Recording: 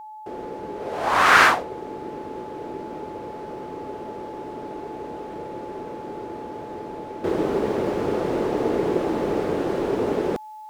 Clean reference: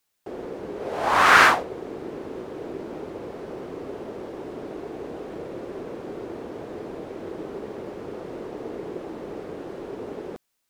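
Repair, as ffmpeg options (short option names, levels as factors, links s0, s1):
-af "bandreject=f=860:w=30,asetnsamples=n=441:p=0,asendcmd='7.24 volume volume -11.5dB',volume=1"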